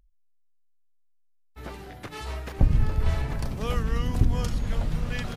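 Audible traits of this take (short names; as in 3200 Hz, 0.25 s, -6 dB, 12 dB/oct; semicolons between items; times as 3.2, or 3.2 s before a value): noise floor -62 dBFS; spectral tilt -6.5 dB/oct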